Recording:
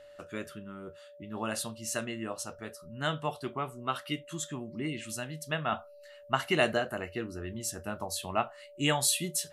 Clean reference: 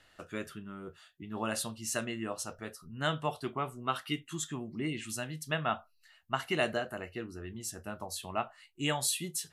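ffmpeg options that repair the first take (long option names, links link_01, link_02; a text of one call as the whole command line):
ffmpeg -i in.wav -af "bandreject=frequency=580:width=30,asetnsamples=nb_out_samples=441:pad=0,asendcmd='5.72 volume volume -4dB',volume=0dB" out.wav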